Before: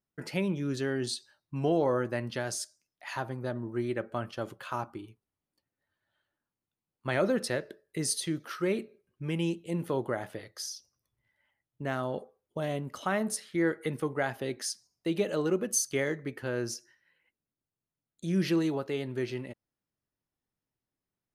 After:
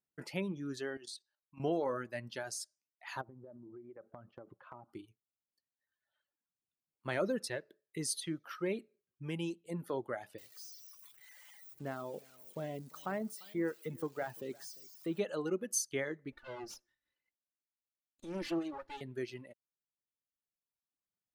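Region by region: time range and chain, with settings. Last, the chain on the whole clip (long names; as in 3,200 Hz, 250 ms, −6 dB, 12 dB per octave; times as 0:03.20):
0:00.97–0:01.60: high-pass filter 440 Hz 6 dB per octave + output level in coarse steps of 10 dB
0:03.21–0:04.89: low-pass filter 1,000 Hz + downward compressor 12 to 1, threshold −38 dBFS
0:10.38–0:15.19: spike at every zero crossing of −29 dBFS + de-essing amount 80% + single-tap delay 346 ms −15 dB
0:16.32–0:19.01: lower of the sound and its delayed copy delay 3.4 ms + high-shelf EQ 8,300 Hz −10 dB
whole clip: reverb reduction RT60 1.6 s; low-shelf EQ 71 Hz −9 dB; level −5.5 dB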